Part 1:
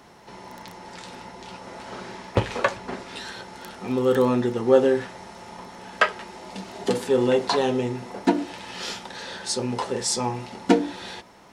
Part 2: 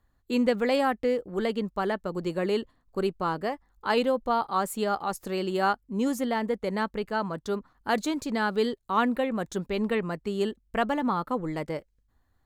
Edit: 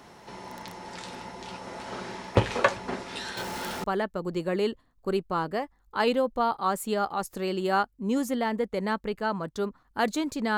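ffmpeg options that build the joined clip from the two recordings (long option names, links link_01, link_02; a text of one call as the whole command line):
ffmpeg -i cue0.wav -i cue1.wav -filter_complex "[0:a]asettb=1/sr,asplit=3[link_01][link_02][link_03];[link_01]atrim=end=3.374[link_04];[link_02]atrim=start=3.37:end=3.84,asetpts=PTS-STARTPTS,afade=type=in:duration=0.004:curve=qsin,afade=type=out:start_time=0.466:duration=0.004:curve=qsin,aeval=exprs='val(0)+0.5*0.0224*sgn(val(0))':channel_layout=same[link_05];[link_03]atrim=start=3.836[link_06];[link_04][link_05]acrossfade=duration=0.004:curve1=hsin:curve2=qsin[link_07];[link_07][link_06]acrossfade=duration=0.004:curve1=qsin:curve2=hsin,apad=whole_dur=10.57,atrim=end=10.57,atrim=end=3.842[link_08];[1:a]atrim=start=1.738:end=8.47[link_09];[link_08][link_09]acrossfade=duration=0.004:curve1=hsin:curve2=hsin" out.wav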